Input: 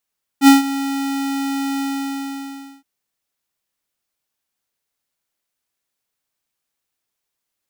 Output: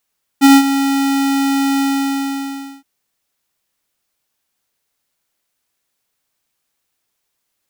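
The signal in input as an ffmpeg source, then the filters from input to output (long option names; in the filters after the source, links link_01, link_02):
-f lavfi -i "aevalsrc='0.501*(2*lt(mod(275*t,1),0.5)-1)':duration=2.42:sample_rate=44100,afade=type=in:duration=0.065,afade=type=out:start_time=0.065:duration=0.146:silence=0.158,afade=type=out:start_time=1.39:duration=1.03"
-af "aeval=exprs='0.501*sin(PI/2*1.41*val(0)/0.501)':channel_layout=same"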